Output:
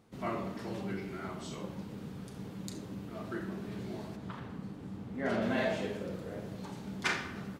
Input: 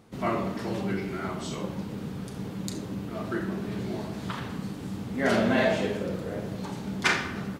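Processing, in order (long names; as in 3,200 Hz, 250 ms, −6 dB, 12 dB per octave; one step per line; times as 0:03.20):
0:04.15–0:05.41: high-shelf EQ 2,200 Hz → 3,500 Hz −10.5 dB
level −8 dB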